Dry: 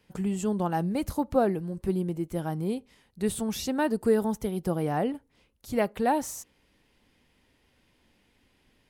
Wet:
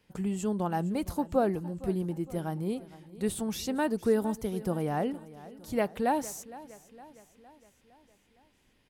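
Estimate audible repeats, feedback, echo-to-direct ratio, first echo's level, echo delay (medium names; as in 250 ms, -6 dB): 4, 54%, -16.5 dB, -18.0 dB, 461 ms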